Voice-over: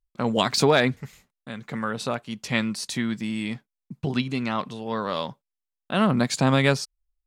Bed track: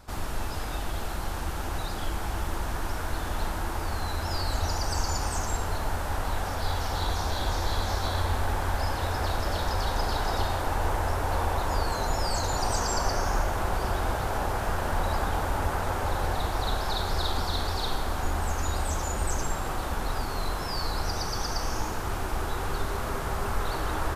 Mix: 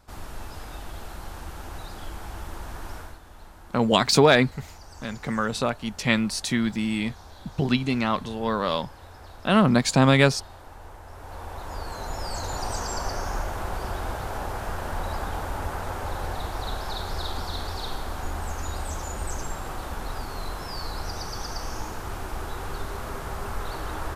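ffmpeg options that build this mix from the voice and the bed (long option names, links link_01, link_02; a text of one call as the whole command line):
ffmpeg -i stem1.wav -i stem2.wav -filter_complex "[0:a]adelay=3550,volume=2.5dB[link_01];[1:a]volume=8dB,afade=type=out:start_time=2.96:duration=0.23:silence=0.281838,afade=type=in:start_time=11.06:duration=1.46:silence=0.199526[link_02];[link_01][link_02]amix=inputs=2:normalize=0" out.wav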